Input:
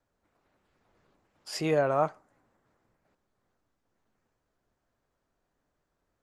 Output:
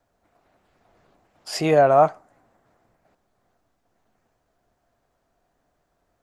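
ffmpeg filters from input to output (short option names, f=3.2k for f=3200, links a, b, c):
-af "equalizer=f=700:w=4.8:g=8.5,volume=7dB"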